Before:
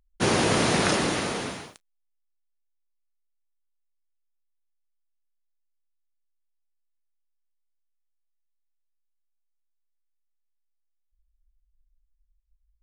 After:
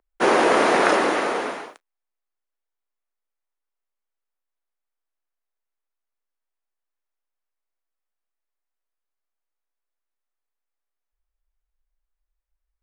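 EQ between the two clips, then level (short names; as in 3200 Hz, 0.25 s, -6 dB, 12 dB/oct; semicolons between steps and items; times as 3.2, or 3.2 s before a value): three-band isolator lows -18 dB, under 280 Hz, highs -14 dB, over 2100 Hz; bell 110 Hz -14 dB 1.2 oct; +9.0 dB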